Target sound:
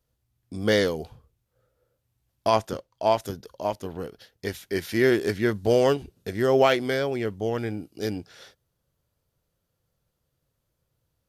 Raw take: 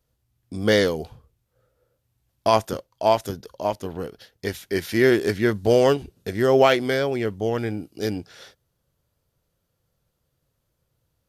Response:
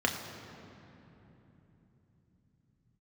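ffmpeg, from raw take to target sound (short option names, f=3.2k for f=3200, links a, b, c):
-filter_complex "[0:a]asettb=1/sr,asplit=3[a][b][c];[a]atrim=end=2.504[d];[b]atrim=start=2.5:end=3.18,asetpts=PTS-STARTPTS,afade=t=in:d=0.004:c=qsin,afade=t=out:st=0.676:d=0.004:c=qsin,highshelf=f=12k:g=-11[e];[c]atrim=start=3.176[f];[d][e]acrossfade=d=0.004:c1=hsin:c2=qsin[g];[g][f]acrossfade=d=0.004:c1=qsin:c2=hsin,volume=-3dB"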